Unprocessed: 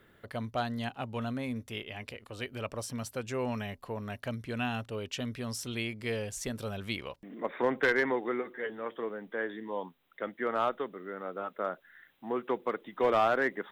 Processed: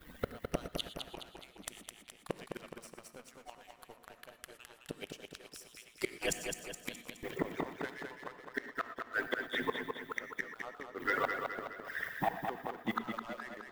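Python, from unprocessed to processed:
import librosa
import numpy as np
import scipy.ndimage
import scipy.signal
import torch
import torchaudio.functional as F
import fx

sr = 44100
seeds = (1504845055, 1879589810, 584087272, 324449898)

y = fx.hpss_only(x, sr, part='percussive')
y = fx.recorder_agc(y, sr, target_db=-27.0, rise_db_per_s=17.0, max_gain_db=30)
y = fx.high_shelf(y, sr, hz=6200.0, db=7.5)
y = fx.gate_flip(y, sr, shuts_db=-31.0, range_db=-29)
y = fx.leveller(y, sr, passes=2)
y = fx.low_shelf(y, sr, hz=200.0, db=6.5)
y = fx.echo_feedback(y, sr, ms=210, feedback_pct=52, wet_db=-5.5)
y = fx.rev_gated(y, sr, seeds[0], gate_ms=140, shape='rising', drr_db=11.5)
y = y * 10.0 ** (6.0 / 20.0)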